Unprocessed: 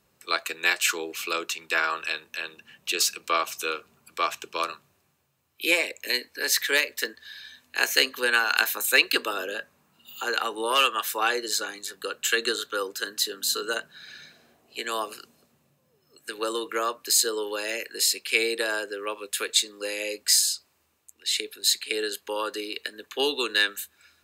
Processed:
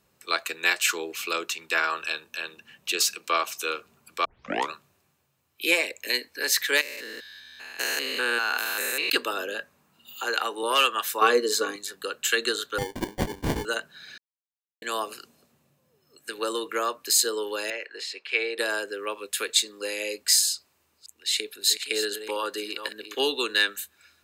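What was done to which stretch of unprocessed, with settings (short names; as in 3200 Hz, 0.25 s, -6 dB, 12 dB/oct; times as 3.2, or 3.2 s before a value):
2–2.42 notch 2000 Hz, Q 6.9
3.16–3.7 Bessel high-pass 180 Hz
4.25 tape start 0.47 s
6.81–9.1 stepped spectrum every 0.2 s
10.14–10.63 HPF 240 Hz
11.21–11.76 small resonant body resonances 270/440/1100 Hz, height 15 dB, ringing for 55 ms
12.78–13.65 sample-rate reducer 1300 Hz
14.18–14.82 mute
17.7–18.58 BPF 460–2700 Hz
20.54–23.21 reverse delay 0.261 s, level -10 dB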